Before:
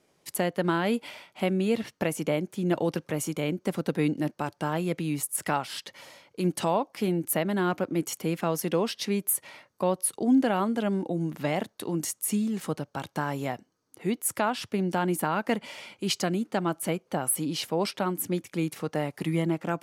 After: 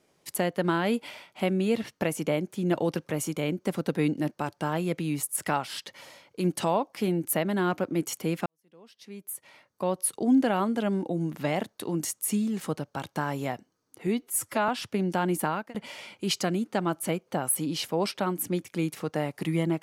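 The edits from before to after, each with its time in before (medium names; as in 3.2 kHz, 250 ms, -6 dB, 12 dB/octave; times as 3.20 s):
8.46–10.07 s: fade in quadratic
14.07–14.48 s: stretch 1.5×
15.27–15.54 s: fade out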